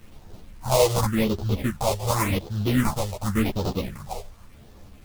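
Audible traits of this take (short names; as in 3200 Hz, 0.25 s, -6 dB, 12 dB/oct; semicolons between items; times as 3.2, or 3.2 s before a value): aliases and images of a low sample rate 1600 Hz, jitter 20%; phasing stages 4, 0.89 Hz, lowest notch 250–2100 Hz; a quantiser's noise floor 10-bit, dither none; a shimmering, thickened sound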